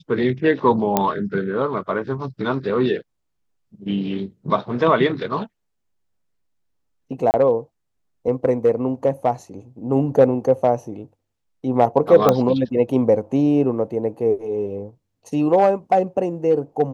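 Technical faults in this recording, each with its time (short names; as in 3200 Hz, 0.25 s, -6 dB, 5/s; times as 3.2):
0.97 pop -3 dBFS
7.31–7.34 gap 29 ms
12.29 pop -3 dBFS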